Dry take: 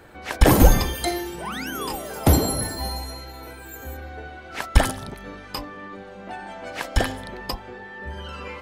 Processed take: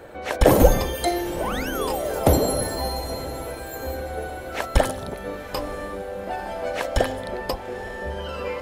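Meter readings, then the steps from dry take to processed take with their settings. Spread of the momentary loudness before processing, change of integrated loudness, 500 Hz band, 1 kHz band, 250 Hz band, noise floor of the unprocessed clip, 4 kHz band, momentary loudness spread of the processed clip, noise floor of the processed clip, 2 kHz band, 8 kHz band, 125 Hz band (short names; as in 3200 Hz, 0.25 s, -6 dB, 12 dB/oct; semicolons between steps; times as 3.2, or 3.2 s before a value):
20 LU, -1.0 dB, +5.5 dB, +2.0 dB, -1.0 dB, -41 dBFS, -1.5 dB, 13 LU, -36 dBFS, -0.5 dB, -2.0 dB, -3.0 dB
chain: in parallel at +0.5 dB: compressor, threshold -28 dBFS, peak gain reduction 19 dB; on the sum: bell 540 Hz +10.5 dB 0.84 oct; notch 4900 Hz, Q 16; on a send: diffused feedback echo 0.94 s, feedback 59%, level -15.5 dB; on the sum: gain -5 dB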